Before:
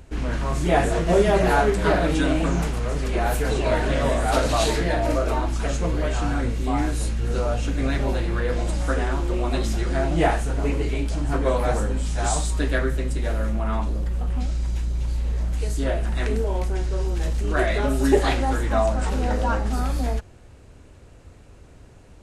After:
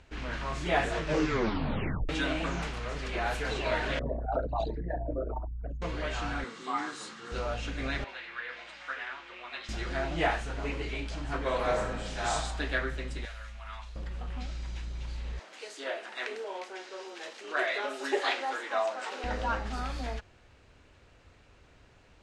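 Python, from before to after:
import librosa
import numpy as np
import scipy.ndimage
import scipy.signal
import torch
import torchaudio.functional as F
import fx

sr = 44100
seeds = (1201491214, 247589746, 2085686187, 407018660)

y = fx.envelope_sharpen(x, sr, power=3.0, at=(3.99, 5.82))
y = fx.cabinet(y, sr, low_hz=200.0, low_slope=24, high_hz=9900.0, hz=(260.0, 610.0, 1200.0, 2500.0, 7900.0), db=(-5, -9, 9, -8, 4), at=(6.44, 7.32))
y = fx.bandpass_q(y, sr, hz=2100.0, q=1.2, at=(8.04, 9.69))
y = fx.reverb_throw(y, sr, start_s=11.42, length_s=0.92, rt60_s=1.1, drr_db=2.5)
y = fx.tone_stack(y, sr, knobs='10-0-10', at=(13.25, 13.96))
y = fx.highpass(y, sr, hz=350.0, slope=24, at=(15.39, 19.24))
y = fx.edit(y, sr, fx.tape_stop(start_s=0.98, length_s=1.11), tone=tone)
y = scipy.signal.sosfilt(scipy.signal.butter(2, 4200.0, 'lowpass', fs=sr, output='sos'), y)
y = fx.tilt_shelf(y, sr, db=-6.5, hz=850.0)
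y = y * librosa.db_to_amplitude(-6.5)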